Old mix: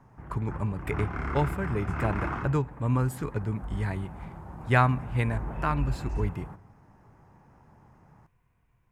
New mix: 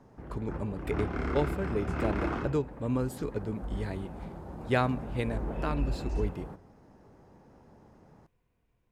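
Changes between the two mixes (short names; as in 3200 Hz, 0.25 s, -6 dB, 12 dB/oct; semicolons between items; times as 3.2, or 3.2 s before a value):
speech -4.5 dB; master: add graphic EQ 125/250/500/1000/2000/4000 Hz -5/+4/+7/-5/-3/+7 dB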